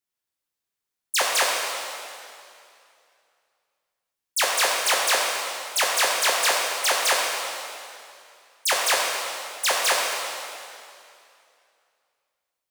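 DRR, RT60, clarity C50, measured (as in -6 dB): -2.5 dB, 2.5 s, 0.0 dB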